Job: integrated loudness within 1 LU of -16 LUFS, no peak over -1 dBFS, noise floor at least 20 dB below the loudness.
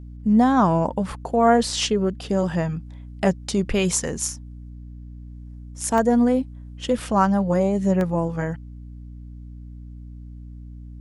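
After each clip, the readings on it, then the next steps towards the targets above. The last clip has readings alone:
dropouts 2; longest dropout 1.2 ms; hum 60 Hz; highest harmonic 300 Hz; hum level -35 dBFS; loudness -21.5 LUFS; peak level -4.0 dBFS; loudness target -16.0 LUFS
-> interpolate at 5.98/8.01 s, 1.2 ms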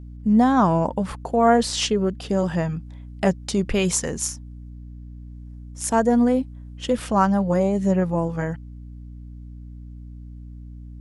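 dropouts 0; hum 60 Hz; highest harmonic 300 Hz; hum level -35 dBFS
-> de-hum 60 Hz, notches 5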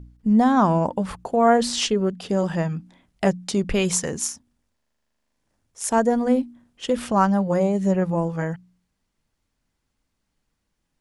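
hum not found; loudness -22.0 LUFS; peak level -4.0 dBFS; loudness target -16.0 LUFS
-> trim +6 dB; peak limiter -1 dBFS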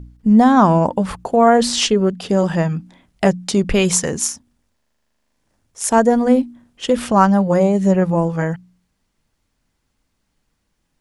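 loudness -16.0 LUFS; peak level -1.0 dBFS; noise floor -71 dBFS

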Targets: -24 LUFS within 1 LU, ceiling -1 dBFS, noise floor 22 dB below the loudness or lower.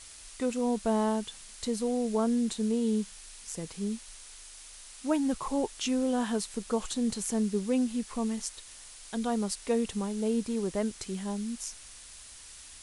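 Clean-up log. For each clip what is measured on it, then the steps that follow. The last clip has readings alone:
noise floor -49 dBFS; noise floor target -54 dBFS; loudness -31.5 LUFS; peak level -14.5 dBFS; loudness target -24.0 LUFS
-> noise print and reduce 6 dB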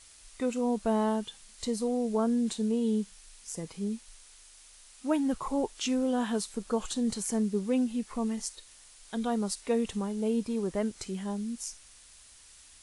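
noise floor -55 dBFS; loudness -31.5 LUFS; peak level -14.5 dBFS; loudness target -24.0 LUFS
-> trim +7.5 dB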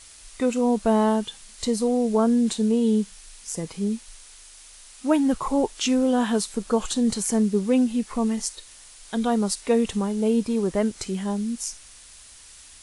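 loudness -24.0 LUFS; peak level -7.0 dBFS; noise floor -48 dBFS

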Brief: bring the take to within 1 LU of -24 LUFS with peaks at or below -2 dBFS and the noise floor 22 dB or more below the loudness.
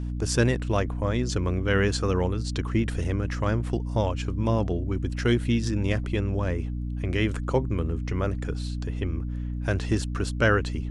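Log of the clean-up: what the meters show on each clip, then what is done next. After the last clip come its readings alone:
hum 60 Hz; highest harmonic 300 Hz; hum level -28 dBFS; loudness -27.0 LUFS; peak level -8.5 dBFS; loudness target -24.0 LUFS
-> hum notches 60/120/180/240/300 Hz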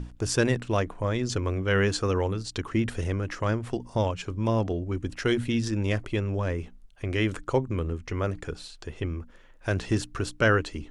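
hum not found; loudness -28.0 LUFS; peak level -10.0 dBFS; loudness target -24.0 LUFS
-> trim +4 dB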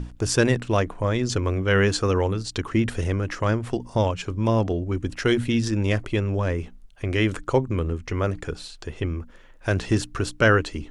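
loudness -24.0 LUFS; peak level -6.0 dBFS; noise floor -48 dBFS

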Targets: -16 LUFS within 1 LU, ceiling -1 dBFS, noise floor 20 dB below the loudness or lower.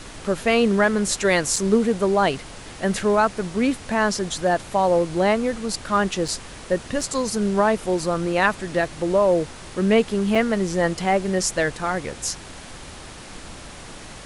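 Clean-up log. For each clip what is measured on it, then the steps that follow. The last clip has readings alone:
dropouts 4; longest dropout 3.9 ms; noise floor -40 dBFS; noise floor target -42 dBFS; loudness -21.5 LUFS; peak level -5.5 dBFS; loudness target -16.0 LUFS
-> interpolate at 1.56/6.28/7.01/10.35 s, 3.9 ms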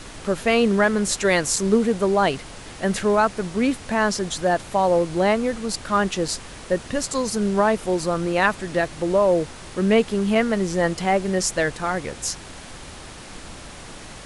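dropouts 0; noise floor -40 dBFS; noise floor target -42 dBFS
-> noise print and reduce 6 dB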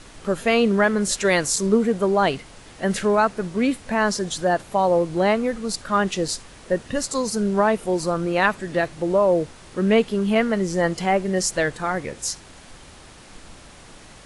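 noise floor -45 dBFS; loudness -22.0 LUFS; peak level -5.5 dBFS; loudness target -16.0 LUFS
-> trim +6 dB; peak limiter -1 dBFS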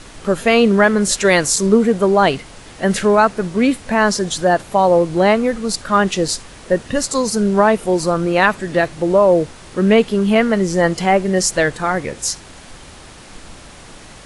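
loudness -16.0 LUFS; peak level -1.0 dBFS; noise floor -39 dBFS

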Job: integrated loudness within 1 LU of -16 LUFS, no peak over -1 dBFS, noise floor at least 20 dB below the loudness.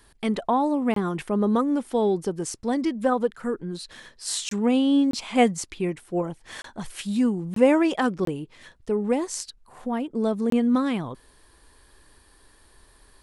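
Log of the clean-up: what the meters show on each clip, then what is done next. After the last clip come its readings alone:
dropouts 7; longest dropout 23 ms; loudness -24.5 LUFS; peak level -5.5 dBFS; loudness target -16.0 LUFS
-> interpolate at 0.94/4.49/5.11/6.62/7.54/8.25/10.50 s, 23 ms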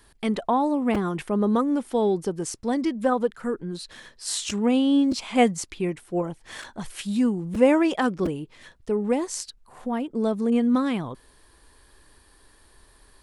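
dropouts 0; loudness -24.5 LUFS; peak level -5.5 dBFS; loudness target -16.0 LUFS
-> trim +8.5 dB; peak limiter -1 dBFS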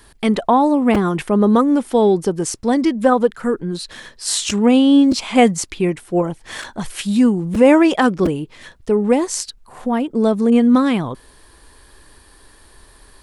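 loudness -16.5 LUFS; peak level -1.0 dBFS; noise floor -49 dBFS

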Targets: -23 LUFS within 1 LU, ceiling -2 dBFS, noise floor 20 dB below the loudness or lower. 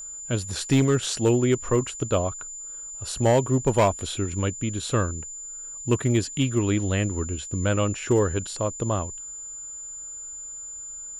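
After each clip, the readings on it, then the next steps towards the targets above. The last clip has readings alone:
clipped samples 0.4%; clipping level -13.0 dBFS; steady tone 7.1 kHz; tone level -35 dBFS; loudness -25.5 LUFS; peak level -13.0 dBFS; loudness target -23.0 LUFS
-> clip repair -13 dBFS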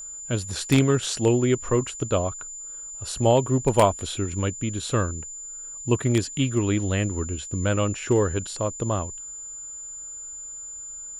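clipped samples 0.0%; steady tone 7.1 kHz; tone level -35 dBFS
-> band-stop 7.1 kHz, Q 30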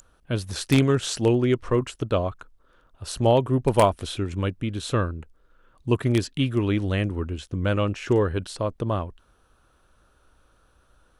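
steady tone not found; loudness -24.5 LUFS; peak level -4.0 dBFS; loudness target -23.0 LUFS
-> trim +1.5 dB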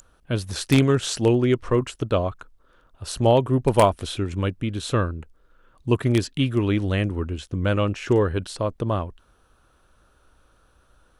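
loudness -23.0 LUFS; peak level -2.5 dBFS; noise floor -61 dBFS

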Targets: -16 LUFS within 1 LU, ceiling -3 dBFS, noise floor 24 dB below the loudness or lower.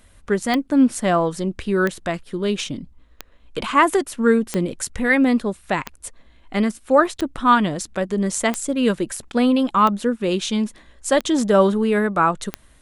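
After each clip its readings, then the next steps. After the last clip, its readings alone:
clicks found 10; loudness -20.0 LUFS; peak level -2.5 dBFS; loudness target -16.0 LUFS
-> de-click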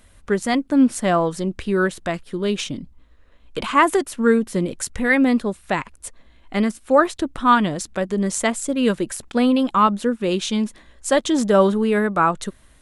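clicks found 0; loudness -20.0 LUFS; peak level -2.5 dBFS; loudness target -16.0 LUFS
-> trim +4 dB; peak limiter -3 dBFS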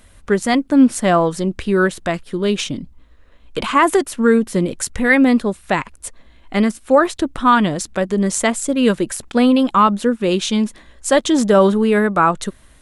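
loudness -16.5 LUFS; peak level -3.0 dBFS; noise floor -49 dBFS

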